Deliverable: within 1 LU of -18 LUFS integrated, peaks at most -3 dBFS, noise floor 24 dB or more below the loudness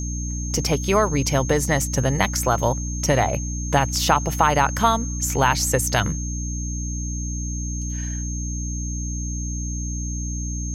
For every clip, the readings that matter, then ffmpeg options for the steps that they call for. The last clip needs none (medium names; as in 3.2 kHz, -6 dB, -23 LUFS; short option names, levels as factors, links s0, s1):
hum 60 Hz; highest harmonic 300 Hz; hum level -25 dBFS; steady tone 6.4 kHz; tone level -32 dBFS; loudness -22.5 LUFS; peak level -3.0 dBFS; loudness target -18.0 LUFS
-> -af "bandreject=f=60:t=h:w=4,bandreject=f=120:t=h:w=4,bandreject=f=180:t=h:w=4,bandreject=f=240:t=h:w=4,bandreject=f=300:t=h:w=4"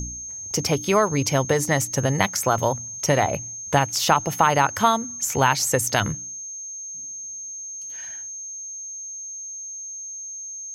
hum not found; steady tone 6.4 kHz; tone level -32 dBFS
-> -af "bandreject=f=6400:w=30"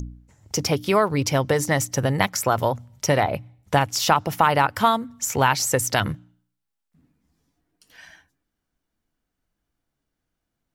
steady tone not found; loudness -22.0 LUFS; peak level -4.0 dBFS; loudness target -18.0 LUFS
-> -af "volume=1.58,alimiter=limit=0.708:level=0:latency=1"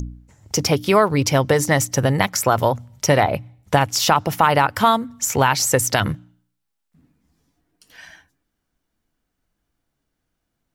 loudness -18.5 LUFS; peak level -3.0 dBFS; noise floor -77 dBFS